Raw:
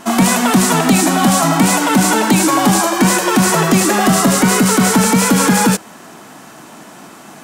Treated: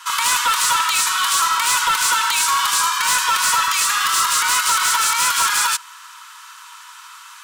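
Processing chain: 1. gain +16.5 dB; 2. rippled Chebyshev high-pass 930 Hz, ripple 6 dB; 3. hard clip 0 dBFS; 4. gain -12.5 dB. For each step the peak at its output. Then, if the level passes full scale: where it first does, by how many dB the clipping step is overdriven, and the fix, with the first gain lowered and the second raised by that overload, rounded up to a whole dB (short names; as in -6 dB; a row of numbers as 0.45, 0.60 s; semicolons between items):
+13.5, +9.5, 0.0, -12.5 dBFS; step 1, 9.5 dB; step 1 +6.5 dB, step 4 -2.5 dB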